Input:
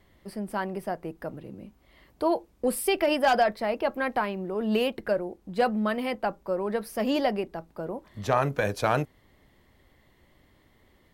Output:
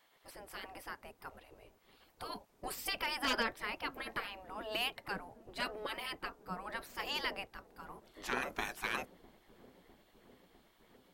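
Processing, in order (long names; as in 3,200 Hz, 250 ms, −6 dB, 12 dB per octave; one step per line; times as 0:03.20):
gate on every frequency bin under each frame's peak −15 dB weak
delay with a low-pass on its return 654 ms, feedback 75%, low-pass 420 Hz, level −15 dB
level −1 dB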